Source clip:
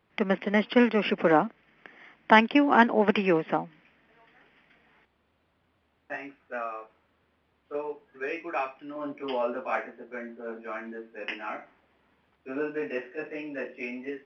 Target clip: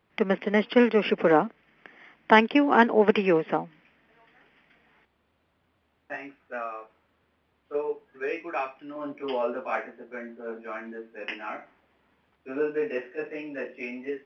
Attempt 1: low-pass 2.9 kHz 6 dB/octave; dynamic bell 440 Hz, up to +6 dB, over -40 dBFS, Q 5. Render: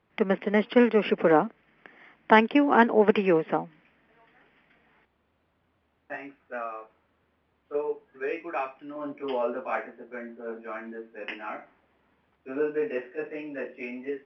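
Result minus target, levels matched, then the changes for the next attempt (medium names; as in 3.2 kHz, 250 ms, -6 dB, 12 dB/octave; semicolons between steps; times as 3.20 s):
4 kHz band -3.0 dB
remove: low-pass 2.9 kHz 6 dB/octave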